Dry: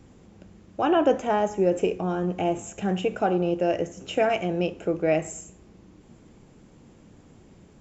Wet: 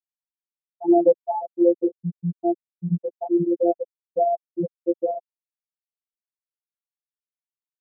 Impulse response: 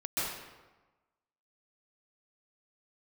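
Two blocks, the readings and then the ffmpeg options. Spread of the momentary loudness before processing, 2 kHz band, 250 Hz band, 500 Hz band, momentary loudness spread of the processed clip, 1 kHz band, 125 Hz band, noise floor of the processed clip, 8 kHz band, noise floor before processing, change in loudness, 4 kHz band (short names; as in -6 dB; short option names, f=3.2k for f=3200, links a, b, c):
8 LU, under -40 dB, +3.0 dB, +1.5 dB, 11 LU, -0.5 dB, +0.5 dB, under -85 dBFS, n/a, -53 dBFS, +1.5 dB, under -40 dB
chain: -af "afftfilt=real='re*gte(hypot(re,im),0.562)':imag='im*gte(hypot(re,im),0.562)':win_size=1024:overlap=0.75,afftfilt=real='hypot(re,im)*cos(PI*b)':imag='0':win_size=1024:overlap=0.75,bandpass=f=280:t=q:w=0.52:csg=0,volume=8.5dB"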